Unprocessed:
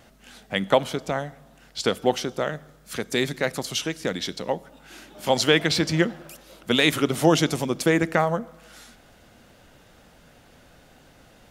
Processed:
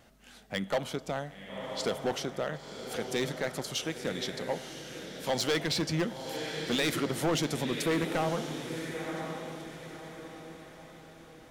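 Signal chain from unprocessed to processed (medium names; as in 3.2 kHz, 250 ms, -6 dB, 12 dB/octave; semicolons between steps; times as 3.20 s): echo that smears into a reverb 1032 ms, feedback 42%, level -9 dB; overload inside the chain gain 17 dB; trim -6.5 dB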